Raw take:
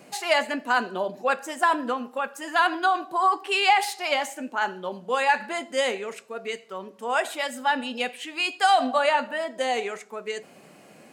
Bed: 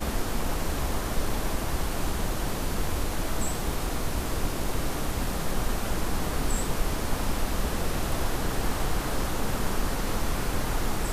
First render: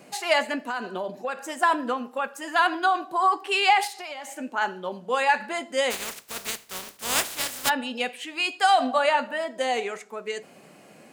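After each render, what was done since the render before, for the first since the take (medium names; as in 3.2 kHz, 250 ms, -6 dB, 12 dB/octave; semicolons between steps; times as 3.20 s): 0.64–1.48 s: compression, threshold -25 dBFS; 3.87–4.33 s: compression 8:1, threshold -33 dBFS; 5.90–7.68 s: spectral contrast reduction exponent 0.21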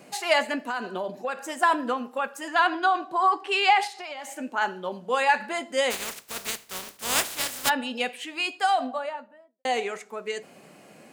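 2.48–4.19 s: distance through air 51 m; 8.18–9.65 s: studio fade out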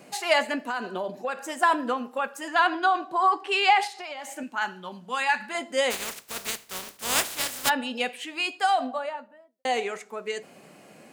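4.43–5.55 s: peaking EQ 490 Hz -12.5 dB 1.1 oct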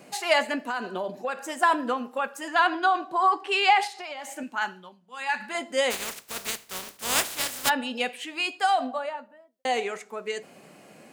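4.64–5.43 s: dip -17 dB, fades 0.32 s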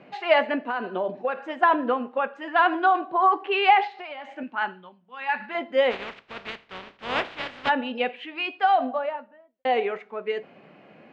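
low-pass 3.1 kHz 24 dB/octave; dynamic bell 470 Hz, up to +5 dB, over -36 dBFS, Q 0.77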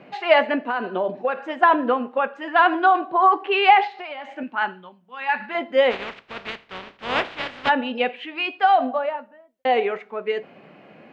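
trim +3.5 dB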